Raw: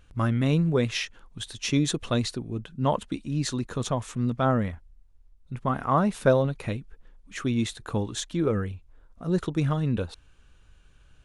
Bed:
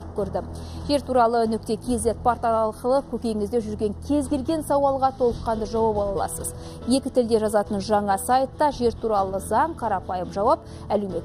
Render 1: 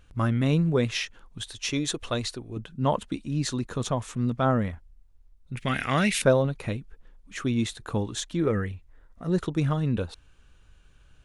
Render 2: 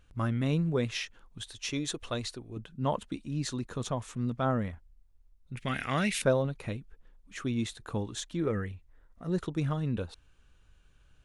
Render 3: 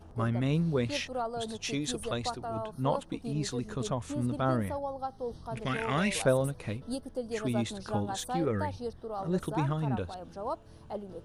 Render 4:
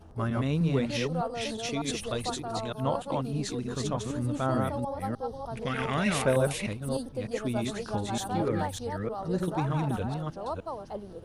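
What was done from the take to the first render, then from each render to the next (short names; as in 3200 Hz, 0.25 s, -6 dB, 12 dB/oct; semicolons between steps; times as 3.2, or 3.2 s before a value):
1.43–2.57 bell 180 Hz -9.5 dB 1.3 oct; 5.57–6.22 resonant high shelf 1500 Hz +13 dB, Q 3; 8.41–9.34 bell 1900 Hz +11.5 dB 0.24 oct
gain -5.5 dB
add bed -15.5 dB
reverse delay 0.303 s, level -2.5 dB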